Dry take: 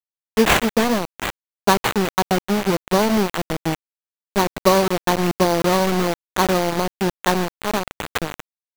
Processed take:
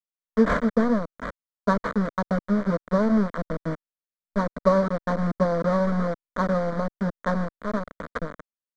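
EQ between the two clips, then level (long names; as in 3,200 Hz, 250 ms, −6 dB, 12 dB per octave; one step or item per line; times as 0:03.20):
head-to-tape spacing loss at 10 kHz 33 dB
phaser with its sweep stopped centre 540 Hz, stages 8
0.0 dB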